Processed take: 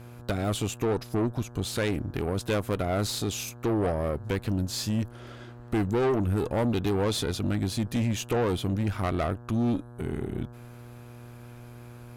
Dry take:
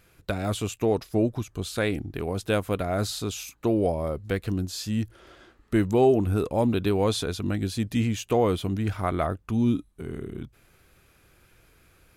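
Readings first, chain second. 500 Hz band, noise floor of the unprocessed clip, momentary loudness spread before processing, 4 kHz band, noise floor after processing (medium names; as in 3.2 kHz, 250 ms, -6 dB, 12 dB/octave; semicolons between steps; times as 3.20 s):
-3.5 dB, -61 dBFS, 9 LU, +0.5 dB, -46 dBFS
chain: in parallel at 0 dB: compression, threshold -32 dBFS, peak gain reduction 15.5 dB; on the sum: mains buzz 120 Hz, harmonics 14, -43 dBFS -7 dB/octave; valve stage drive 21 dB, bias 0.55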